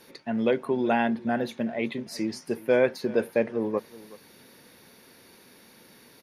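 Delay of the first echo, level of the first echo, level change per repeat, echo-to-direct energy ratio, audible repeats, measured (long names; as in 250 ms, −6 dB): 374 ms, −19.5 dB, repeats not evenly spaced, −19.5 dB, 1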